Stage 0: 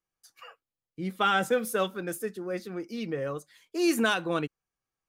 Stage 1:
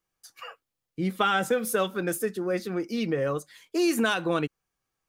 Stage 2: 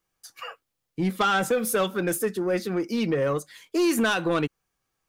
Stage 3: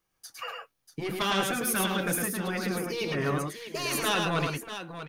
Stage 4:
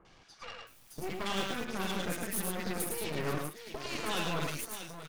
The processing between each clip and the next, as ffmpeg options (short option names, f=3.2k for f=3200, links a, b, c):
-af "acompressor=threshold=-29dB:ratio=3,volume=6.5dB"
-af "asoftclip=type=tanh:threshold=-20dB,volume=4dB"
-af "afftfilt=real='re*lt(hypot(re,im),0.355)':imag='im*lt(hypot(re,im),0.355)':win_size=1024:overlap=0.75,bandreject=f=7.6k:w=8.3,aecho=1:1:107|639:0.668|0.299"
-filter_complex "[0:a]aeval=exprs='val(0)+0.5*0.00891*sgn(val(0))':c=same,acrossover=split=1500|5600[a][b][c];[b]adelay=50[d];[c]adelay=670[e];[a][d][e]amix=inputs=3:normalize=0,aeval=exprs='0.178*(cos(1*acos(clip(val(0)/0.178,-1,1)))-cos(1*PI/2))+0.00631*(cos(7*acos(clip(val(0)/0.178,-1,1)))-cos(7*PI/2))+0.0251*(cos(8*acos(clip(val(0)/0.178,-1,1)))-cos(8*PI/2))':c=same,volume=-7dB"